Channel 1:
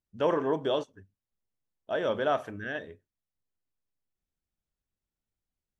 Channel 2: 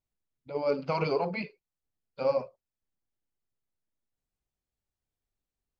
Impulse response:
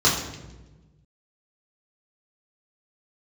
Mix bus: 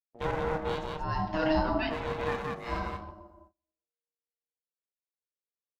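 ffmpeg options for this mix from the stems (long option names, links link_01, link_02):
-filter_complex "[0:a]equalizer=frequency=960:width_type=o:width=0.33:gain=3,aeval=exprs='max(val(0),0)':channel_layout=same,volume=-1dB,asplit=4[link_01][link_02][link_03][link_04];[link_02]volume=-23.5dB[link_05];[link_03]volume=-3.5dB[link_06];[1:a]alimiter=limit=-20dB:level=0:latency=1:release=29,adelay=450,volume=2.5dB,asplit=2[link_07][link_08];[link_08]volume=-20.5dB[link_09];[link_04]apad=whole_len=275615[link_10];[link_07][link_10]sidechaincompress=threshold=-51dB:ratio=8:attack=16:release=175[link_11];[2:a]atrim=start_sample=2205[link_12];[link_05][link_09]amix=inputs=2:normalize=0[link_13];[link_13][link_12]afir=irnorm=-1:irlink=0[link_14];[link_06]aecho=0:1:181:1[link_15];[link_01][link_11][link_14][link_15]amix=inputs=4:normalize=0,agate=range=-27dB:threshold=-54dB:ratio=16:detection=peak,aeval=exprs='val(0)*sin(2*PI*470*n/s)':channel_layout=same"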